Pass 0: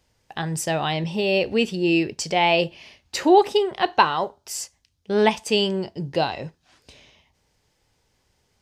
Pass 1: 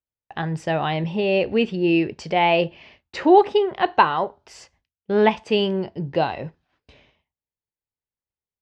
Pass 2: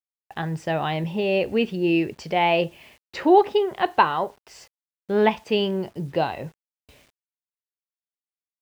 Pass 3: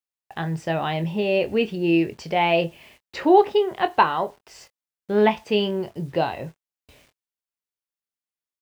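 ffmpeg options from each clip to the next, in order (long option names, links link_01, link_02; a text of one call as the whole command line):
ffmpeg -i in.wav -af "agate=range=-33dB:threshold=-47dB:ratio=3:detection=peak,lowpass=2600,volume=1.5dB" out.wav
ffmpeg -i in.wav -af "acrusher=bits=8:mix=0:aa=0.000001,volume=-2dB" out.wav
ffmpeg -i in.wav -filter_complex "[0:a]asplit=2[link_01][link_02];[link_02]adelay=24,volume=-11dB[link_03];[link_01][link_03]amix=inputs=2:normalize=0" out.wav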